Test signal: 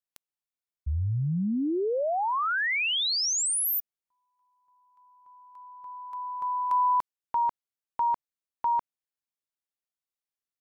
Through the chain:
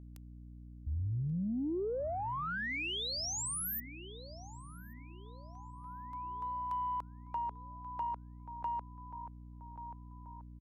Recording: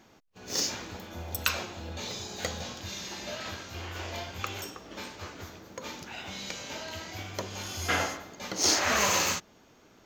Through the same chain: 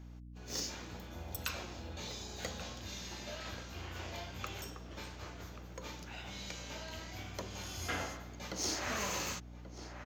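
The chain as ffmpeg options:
ffmpeg -i in.wav -filter_complex "[0:a]asplit=2[link_01][link_02];[link_02]adelay=1133,lowpass=frequency=1500:poles=1,volume=-13dB,asplit=2[link_03][link_04];[link_04]adelay=1133,lowpass=frequency=1500:poles=1,volume=0.51,asplit=2[link_05][link_06];[link_06]adelay=1133,lowpass=frequency=1500:poles=1,volume=0.51,asplit=2[link_07][link_08];[link_08]adelay=1133,lowpass=frequency=1500:poles=1,volume=0.51,asplit=2[link_09][link_10];[link_10]adelay=1133,lowpass=frequency=1500:poles=1,volume=0.51[link_11];[link_03][link_05][link_07][link_09][link_11]amix=inputs=5:normalize=0[link_12];[link_01][link_12]amix=inputs=2:normalize=0,acrossover=split=400[link_13][link_14];[link_14]acompressor=threshold=-32dB:ratio=2:attack=44:release=596:knee=2.83:detection=peak[link_15];[link_13][link_15]amix=inputs=2:normalize=0,aeval=exprs='val(0)+0.00794*(sin(2*PI*60*n/s)+sin(2*PI*2*60*n/s)/2+sin(2*PI*3*60*n/s)/3+sin(2*PI*4*60*n/s)/4+sin(2*PI*5*60*n/s)/5)':channel_layout=same,asoftclip=type=tanh:threshold=-17.5dB,volume=-7dB" out.wav

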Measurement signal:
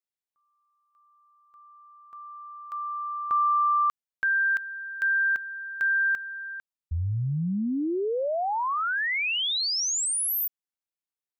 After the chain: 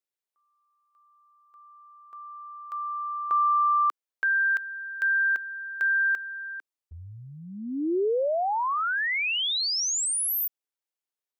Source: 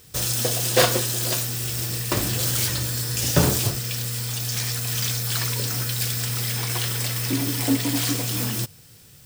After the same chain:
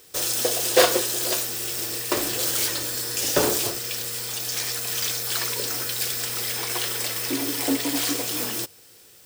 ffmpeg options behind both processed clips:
ffmpeg -i in.wav -af "lowshelf=frequency=240:width_type=q:width=1.5:gain=-13" out.wav

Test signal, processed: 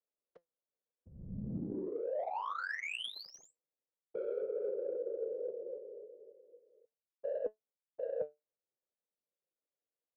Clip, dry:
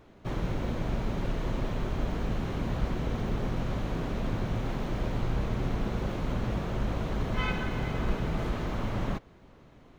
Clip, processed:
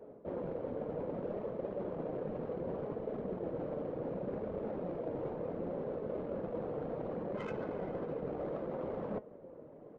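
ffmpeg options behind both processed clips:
ffmpeg -i in.wav -filter_complex "[0:a]acrossover=split=260|2700[link_01][link_02][link_03];[link_02]asoftclip=type=tanh:threshold=-29dB[link_04];[link_01][link_04][link_03]amix=inputs=3:normalize=0,aresample=16000,aresample=44100,highpass=frequency=160:width=0.5412,highpass=frequency=160:width=1.3066,afftfilt=real='hypot(re,im)*cos(2*PI*random(0))':imag='hypot(re,im)*sin(2*PI*random(1))':win_size=512:overlap=0.75,adynamicsmooth=sensitivity=3:basefreq=940,flanger=delay=4.6:depth=2.1:regen=78:speed=0.66:shape=sinusoidal,equalizer=frequency=510:width_type=o:width=0.77:gain=14,areverse,acompressor=threshold=-46dB:ratio=8,areverse,volume=10.5dB" out.wav

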